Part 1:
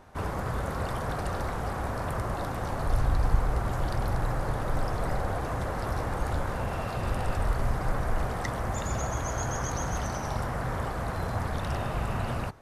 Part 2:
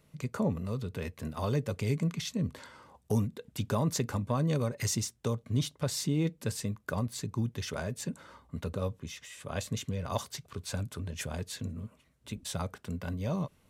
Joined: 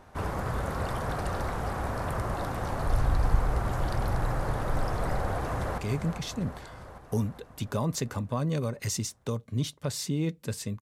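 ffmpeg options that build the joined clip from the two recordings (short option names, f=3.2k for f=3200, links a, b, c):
-filter_complex "[0:a]apad=whole_dur=10.81,atrim=end=10.81,atrim=end=5.782[a];[1:a]atrim=start=1.758:end=6.79[b];[a][b]acrossfade=d=0.004:c1=hsin:c2=hsin,asplit=2[c][d];[d]afade=t=in:st=5.35:d=0.01,afade=t=out:st=5.78:d=0.01,aecho=0:1:400|800|1200|1600|2000|2400|2800|3200|3600:0.421697|0.274103|0.178167|0.115808|0.0752755|0.048929|0.0318039|0.0206725|0.0134371[e];[c][e]amix=inputs=2:normalize=0"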